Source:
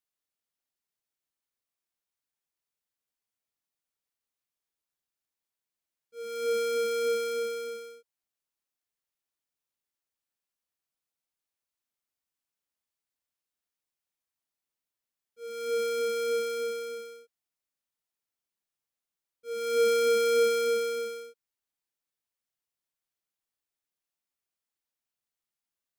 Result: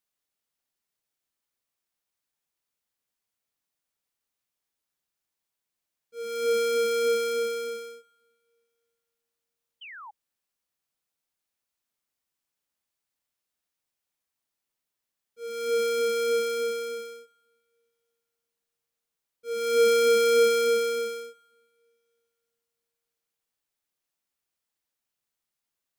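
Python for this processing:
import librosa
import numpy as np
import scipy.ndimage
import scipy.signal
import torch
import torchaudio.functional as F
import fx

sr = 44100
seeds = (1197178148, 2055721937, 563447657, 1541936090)

y = fx.rev_double_slope(x, sr, seeds[0], early_s=0.92, late_s=3.0, knee_db=-18, drr_db=17.5)
y = fx.spec_paint(y, sr, seeds[1], shape='fall', start_s=9.81, length_s=0.3, low_hz=790.0, high_hz=3200.0, level_db=-47.0)
y = F.gain(torch.from_numpy(y), 4.0).numpy()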